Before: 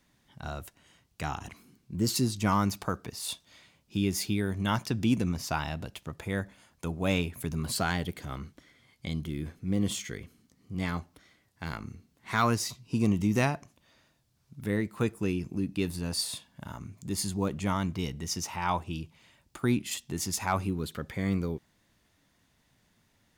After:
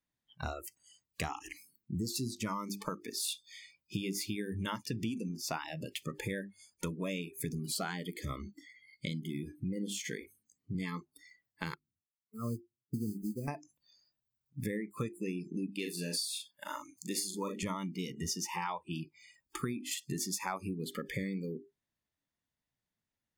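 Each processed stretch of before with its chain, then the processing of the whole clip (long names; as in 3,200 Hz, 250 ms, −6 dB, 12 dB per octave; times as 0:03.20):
0:11.74–0:13.48: moving average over 49 samples + noise that follows the level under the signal 20 dB + expander for the loud parts 2.5 to 1, over −40 dBFS
0:15.71–0:17.63: high-pass filter 390 Hz 6 dB per octave + double-tracking delay 40 ms −5 dB
whole clip: mains-hum notches 50/100/150/200/250/300/350/400 Hz; downward compressor 12 to 1, threshold −39 dBFS; noise reduction from a noise print of the clip's start 29 dB; level +6.5 dB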